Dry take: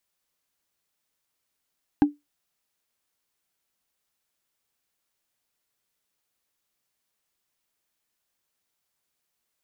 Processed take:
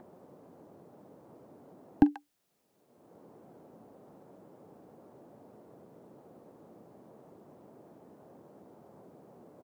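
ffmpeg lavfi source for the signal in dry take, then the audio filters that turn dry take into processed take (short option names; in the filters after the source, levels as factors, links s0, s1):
-f lavfi -i "aevalsrc='0.316*pow(10,-3*t/0.18)*sin(2*PI*292*t)+0.112*pow(10,-3*t/0.053)*sin(2*PI*805*t)+0.0398*pow(10,-3*t/0.024)*sin(2*PI*1578*t)+0.0141*pow(10,-3*t/0.013)*sin(2*PI*2608.4*t)+0.00501*pow(10,-3*t/0.008)*sin(2*PI*3895.3*t)':d=0.45:s=44100"
-filter_complex "[0:a]acrossover=split=120|690[s0][s1][s2];[s1]acompressor=mode=upward:threshold=0.0708:ratio=2.5[s3];[s2]aecho=1:1:43|137:0.158|0.355[s4];[s0][s3][s4]amix=inputs=3:normalize=0"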